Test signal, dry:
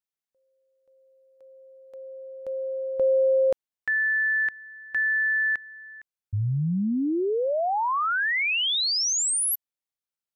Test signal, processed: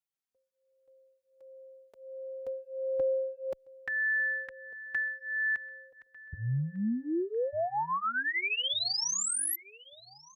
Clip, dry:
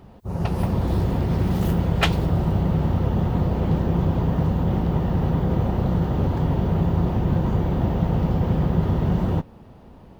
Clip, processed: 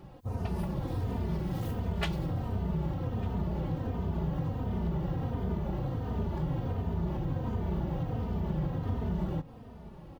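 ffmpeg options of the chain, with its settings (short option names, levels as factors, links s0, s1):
-filter_complex "[0:a]acompressor=threshold=0.0398:ratio=3:attack=8.2:release=274:knee=1:detection=peak,asplit=2[s0][s1];[s1]adelay=1199,lowpass=f=4500:p=1,volume=0.0891,asplit=2[s2][s3];[s3]adelay=1199,lowpass=f=4500:p=1,volume=0.35,asplit=2[s4][s5];[s5]adelay=1199,lowpass=f=4500:p=1,volume=0.35[s6];[s2][s4][s6]amix=inputs=3:normalize=0[s7];[s0][s7]amix=inputs=2:normalize=0,asplit=2[s8][s9];[s9]adelay=3.1,afreqshift=-1.4[s10];[s8][s10]amix=inputs=2:normalize=1"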